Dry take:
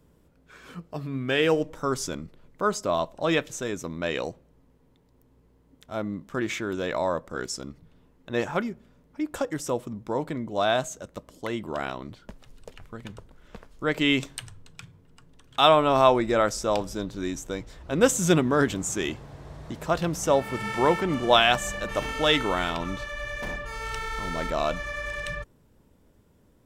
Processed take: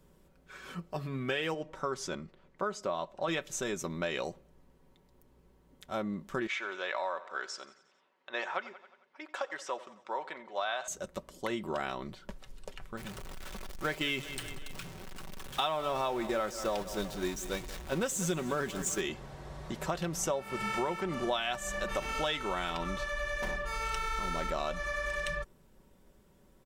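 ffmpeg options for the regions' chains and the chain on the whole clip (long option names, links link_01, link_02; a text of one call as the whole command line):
ffmpeg -i in.wav -filter_complex "[0:a]asettb=1/sr,asplit=3[link_01][link_02][link_03];[link_01]atrim=end=1.544[link_04];[link_02]atrim=start=1.54:end=3.28,asetpts=PTS-STARTPTS,afade=type=in:duration=0.004:curve=qsin,afade=type=out:start_time=1.736:duration=0.004:curve=qsin,highpass=frequency=530:poles=1,aemphasis=mode=reproduction:type=bsi[link_05];[link_03]atrim=start=3.276[link_06];[link_04][link_05]acrossfade=duration=0.004:curve1=hsin:curve2=qsin[link_07];[link_07][link_06]acrossfade=duration=0.004:curve1=qsin:curve2=hsin,asettb=1/sr,asplit=3[link_08][link_09][link_10];[link_08]atrim=end=6.474[link_11];[link_09]atrim=start=6.47:end=10.88,asetpts=PTS-STARTPTS,afade=type=in:duration=0.004:curve=qsin,afade=type=out:start_time=4.406:duration=0.004:curve=qsin,highpass=770,lowpass=3700,aecho=1:1:89|178|267|356|445:0.119|0.0677|0.0386|0.022|0.0125,atrim=end_sample=194481[link_12];[link_10]atrim=start=10.876[link_13];[link_11][link_12]acrossfade=duration=0.004:curve1=hsin:curve2=qsin[link_14];[link_14][link_13]acrossfade=duration=0.004:curve1=qsin:curve2=hsin,asettb=1/sr,asplit=3[link_15][link_16][link_17];[link_15]atrim=end=12.974[link_18];[link_16]atrim=start=12.97:end=19.01,asetpts=PTS-STARTPTS,afade=type=in:duration=0.004:curve=qsin,afade=type=out:start_time=6.036:duration=0.004:curve=qsin,aeval=exprs='val(0)+0.5*0.0316*sgn(val(0))':channel_layout=same,agate=range=-8dB:threshold=-28dB:ratio=16:release=100:detection=peak,aecho=1:1:187|374|561|748:0.126|0.0617|0.0302|0.0148,atrim=end_sample=266364[link_19];[link_17]atrim=start=19.006[link_20];[link_18][link_19]acrossfade=duration=0.004:curve1=hsin:curve2=qsin[link_21];[link_21][link_20]acrossfade=duration=0.004:curve1=qsin:curve2=hsin,equalizer=frequency=150:width_type=o:width=2.8:gain=-4.5,aecho=1:1:5.3:0.46,acompressor=threshold=-30dB:ratio=6" out.wav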